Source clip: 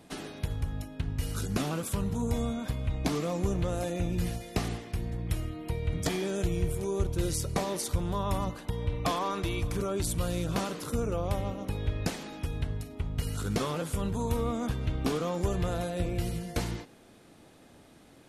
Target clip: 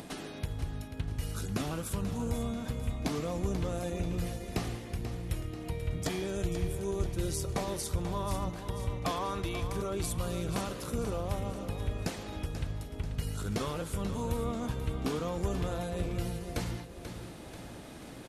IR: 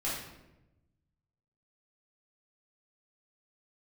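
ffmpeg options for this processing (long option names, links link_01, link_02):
-filter_complex "[0:a]acompressor=mode=upward:threshold=-32dB:ratio=2.5,asplit=2[link_01][link_02];[link_02]aecho=0:1:487|974|1461|1948|2435|2922:0.316|0.164|0.0855|0.0445|0.0231|0.012[link_03];[link_01][link_03]amix=inputs=2:normalize=0,volume=-3.5dB"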